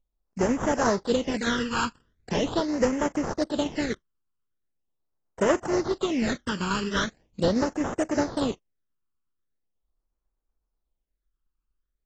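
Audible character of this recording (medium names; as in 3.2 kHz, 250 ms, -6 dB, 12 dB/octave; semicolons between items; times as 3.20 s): aliases and images of a low sample rate 2.4 kHz, jitter 20%; phasing stages 12, 0.41 Hz, lowest notch 630–4000 Hz; tremolo saw down 8.2 Hz, depth 40%; AAC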